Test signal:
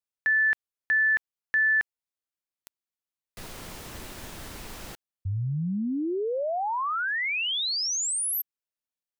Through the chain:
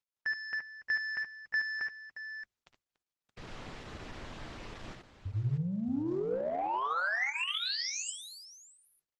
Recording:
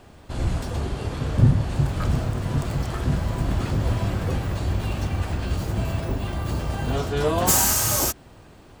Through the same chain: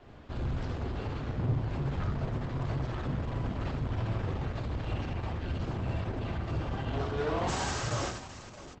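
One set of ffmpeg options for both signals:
-filter_complex "[0:a]bandreject=f=50:t=h:w=6,bandreject=f=100:t=h:w=6,asplit=2[s0][s1];[s1]asoftclip=type=hard:threshold=0.158,volume=0.531[s2];[s0][s2]amix=inputs=2:normalize=0,lowpass=3600,adynamicequalizer=threshold=0.0112:dfrequency=210:dqfactor=4.8:tfrequency=210:tqfactor=4.8:attack=5:release=100:ratio=0.4:range=2.5:mode=cutabove:tftype=bell,asoftclip=type=tanh:threshold=0.0891,asplit=2[s3][s4];[s4]aecho=0:1:58|65|66|74|288|624:0.2|0.282|0.112|0.473|0.133|0.251[s5];[s3][s5]amix=inputs=2:normalize=0,volume=0.422" -ar 48000 -c:a libopus -b:a 12k

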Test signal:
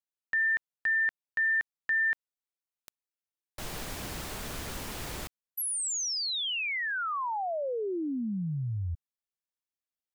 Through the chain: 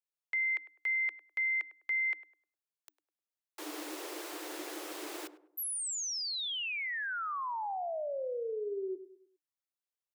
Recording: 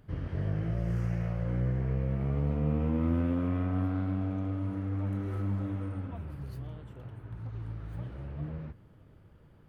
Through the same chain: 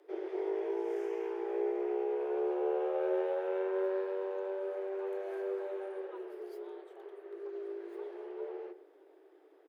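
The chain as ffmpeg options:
-filter_complex "[0:a]afreqshift=290,asplit=2[s0][s1];[s1]adelay=102,lowpass=f=1000:p=1,volume=0.251,asplit=2[s2][s3];[s3]adelay=102,lowpass=f=1000:p=1,volume=0.43,asplit=2[s4][s5];[s5]adelay=102,lowpass=f=1000:p=1,volume=0.43,asplit=2[s6][s7];[s7]adelay=102,lowpass=f=1000:p=1,volume=0.43[s8];[s0][s2][s4][s6][s8]amix=inputs=5:normalize=0,volume=0.596"

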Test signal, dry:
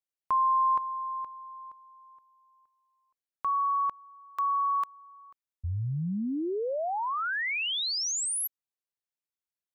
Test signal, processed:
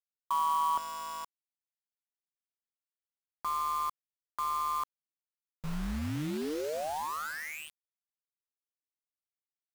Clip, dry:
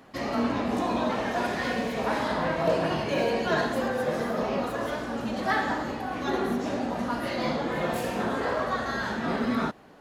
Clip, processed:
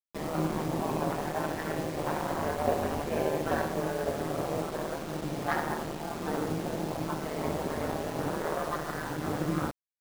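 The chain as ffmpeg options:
-af "aeval=exprs='val(0)*sin(2*PI*77*n/s)':c=same,adynamicsmooth=sensitivity=1:basefreq=1100,acrusher=bits=6:mix=0:aa=0.000001"

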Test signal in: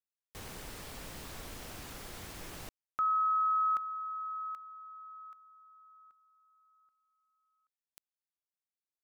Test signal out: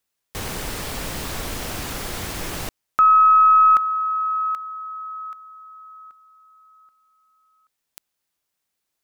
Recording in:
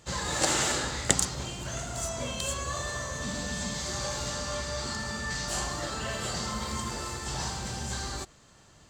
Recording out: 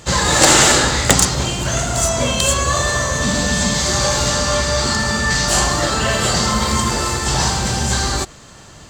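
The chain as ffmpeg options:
-af "aeval=exprs='0.841*(cos(1*acos(clip(val(0)/0.841,-1,1)))-cos(1*PI/2))+0.188*(cos(5*acos(clip(val(0)/0.841,-1,1)))-cos(5*PI/2))+0.0596*(cos(7*acos(clip(val(0)/0.841,-1,1)))-cos(7*PI/2))+0.0299*(cos(8*acos(clip(val(0)/0.841,-1,1)))-cos(8*PI/2))':c=same,apsyclip=4.73,volume=0.841"

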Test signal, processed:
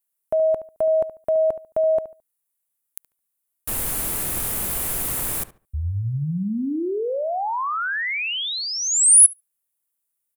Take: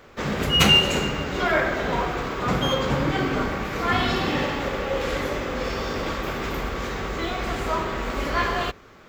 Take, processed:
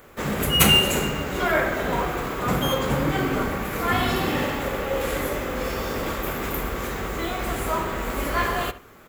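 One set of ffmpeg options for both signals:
-filter_complex "[0:a]highshelf=f=7500:t=q:w=1.5:g=13,asplit=2[s0][s1];[s1]adelay=72,lowpass=f=2400:p=1,volume=0.211,asplit=2[s2][s3];[s3]adelay=72,lowpass=f=2400:p=1,volume=0.26,asplit=2[s4][s5];[s5]adelay=72,lowpass=f=2400:p=1,volume=0.26[s6];[s2][s4][s6]amix=inputs=3:normalize=0[s7];[s0][s7]amix=inputs=2:normalize=0"

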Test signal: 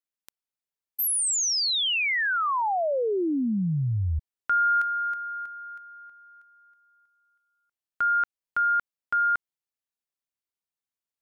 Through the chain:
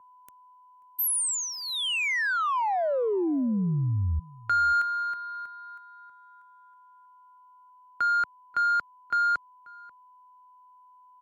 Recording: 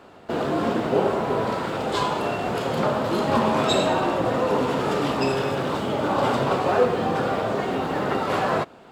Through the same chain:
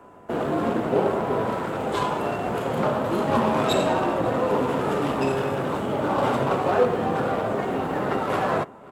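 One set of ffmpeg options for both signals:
-filter_complex "[0:a]aeval=exprs='val(0)+0.00316*sin(2*PI*1000*n/s)':c=same,acrossover=split=140|6100[s0][s1][s2];[s1]adynamicsmooth=sensitivity=2:basefreq=2000[s3];[s0][s3][s2]amix=inputs=3:normalize=0,asplit=2[s4][s5];[s5]adelay=536.4,volume=0.0794,highshelf=f=4000:g=-12.1[s6];[s4][s6]amix=inputs=2:normalize=0" -ar 48000 -c:a libmp3lame -b:a 112k

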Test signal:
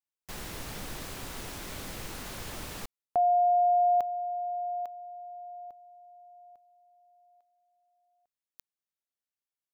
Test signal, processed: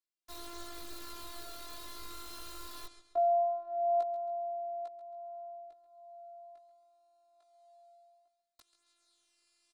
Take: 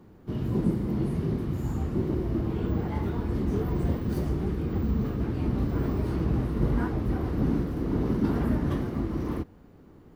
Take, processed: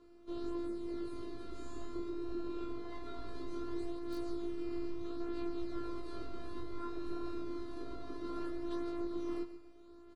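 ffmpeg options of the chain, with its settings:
-filter_complex "[0:a]areverse,acompressor=mode=upward:threshold=0.00794:ratio=2.5:attack=1.2:release=960:knee=2.83:detection=peak,areverse,alimiter=limit=0.075:level=0:latency=1:release=460,afftfilt=real='hypot(re,im)*cos(PI*b)':imag='0':win_size=512:overlap=0.75,bass=f=250:g=-1,treble=f=4000:g=4,aresample=22050,aresample=44100,flanger=delay=17:depth=2.6:speed=0.21,equalizer=f=160:t=o:w=0.33:g=-5,equalizer=f=500:t=o:w=0.33:g=10,equalizer=f=1250:t=o:w=0.33:g=12,equalizer=f=4000:t=o:w=0.33:g=12,aecho=1:1:136|272|408:0.211|0.0761|0.0274,acrossover=split=470|1400[s0][s1][s2];[s2]aeval=exprs='(mod(94.4*val(0)+1,2)-1)/94.4':c=same[s3];[s0][s1][s3]amix=inputs=3:normalize=0,volume=0.794"

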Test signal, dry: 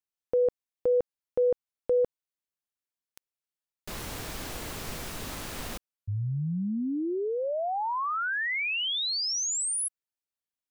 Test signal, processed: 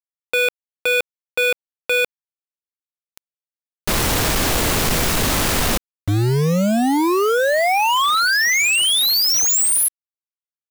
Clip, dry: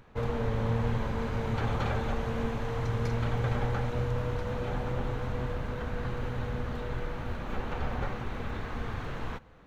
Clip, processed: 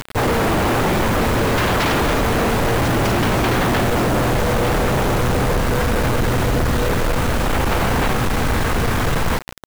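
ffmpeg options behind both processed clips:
-af "aeval=exprs='0.158*sin(PI/2*5.62*val(0)/0.158)':c=same,acrusher=bits=4:mix=0:aa=0.000001,volume=1.33"

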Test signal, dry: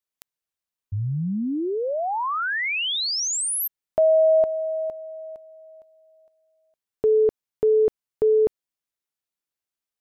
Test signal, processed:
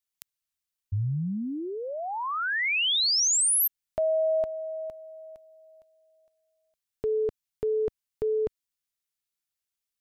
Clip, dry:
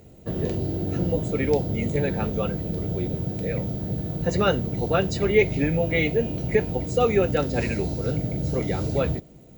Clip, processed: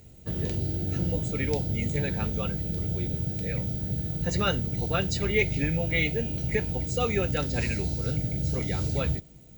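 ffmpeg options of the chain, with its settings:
-af "equalizer=f=480:w=0.35:g=-11,volume=1.33"

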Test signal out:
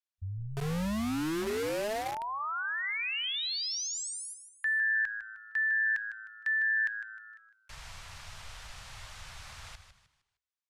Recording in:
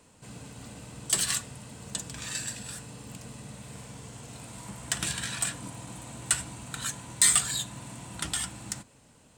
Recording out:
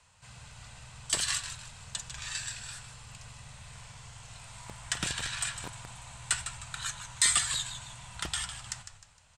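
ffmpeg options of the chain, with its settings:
-filter_complex "[0:a]lowpass=7100,bandreject=f=375.6:t=h:w=4,bandreject=f=751.2:t=h:w=4,bandreject=f=1126.8:t=h:w=4,bandreject=f=1502.4:t=h:w=4,bandreject=f=1878:t=h:w=4,bandreject=f=2253.6:t=h:w=4,bandreject=f=2629.2:t=h:w=4,bandreject=f=3004.8:t=h:w=4,bandreject=f=3380.4:t=h:w=4,bandreject=f=3756:t=h:w=4,bandreject=f=4131.6:t=h:w=4,asplit=5[s0][s1][s2][s3][s4];[s1]adelay=154,afreqshift=-110,volume=0.316[s5];[s2]adelay=308,afreqshift=-220,volume=0.117[s6];[s3]adelay=462,afreqshift=-330,volume=0.0432[s7];[s4]adelay=616,afreqshift=-440,volume=0.016[s8];[s0][s5][s6][s7][s8]amix=inputs=5:normalize=0,acrossover=split=130|710|4700[s9][s10][s11][s12];[s10]acrusher=bits=5:mix=0:aa=0.000001[s13];[s9][s13][s11][s12]amix=inputs=4:normalize=0" -ar 32000 -c:a libvorbis -b:a 128k

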